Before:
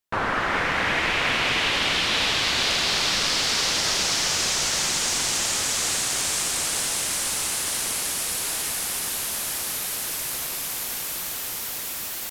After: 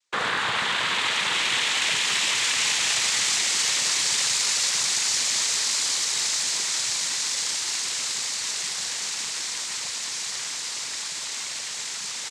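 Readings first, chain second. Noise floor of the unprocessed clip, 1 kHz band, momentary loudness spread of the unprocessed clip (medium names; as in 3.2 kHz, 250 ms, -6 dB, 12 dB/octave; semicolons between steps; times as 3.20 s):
-31 dBFS, -3.5 dB, 7 LU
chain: octave divider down 2 oct, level +1 dB; Bessel high-pass 190 Hz; tilt EQ +2 dB/octave; band-stop 900 Hz, Q 5.3; comb 1 ms; in parallel at +1 dB: compressor with a negative ratio -30 dBFS; on the sum: noise-vocoded speech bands 6; trim -6.5 dB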